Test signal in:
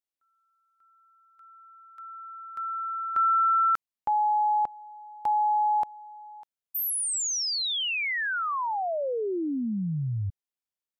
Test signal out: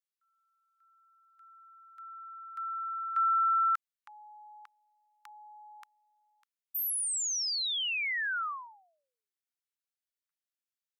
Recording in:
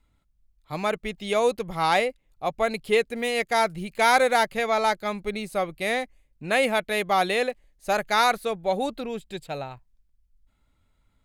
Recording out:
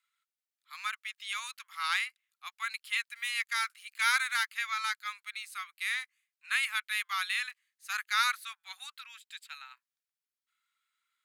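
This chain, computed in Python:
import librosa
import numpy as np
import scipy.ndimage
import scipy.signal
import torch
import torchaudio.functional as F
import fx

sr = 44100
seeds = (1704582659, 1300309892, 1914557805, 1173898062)

y = scipy.signal.sosfilt(scipy.signal.butter(8, 1200.0, 'highpass', fs=sr, output='sos'), x)
y = F.gain(torch.from_numpy(y), -3.5).numpy()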